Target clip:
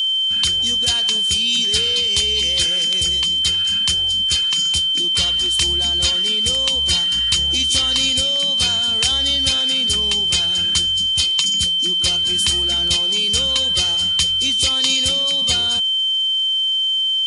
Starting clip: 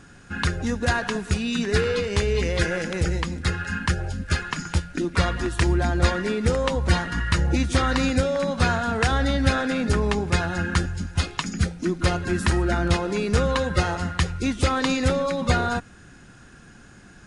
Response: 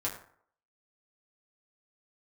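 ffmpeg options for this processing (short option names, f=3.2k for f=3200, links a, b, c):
-af "aeval=exprs='val(0)+0.0631*sin(2*PI*3100*n/s)':c=same,aexciter=amount=10.6:drive=3.6:freq=2.5k,volume=-9dB"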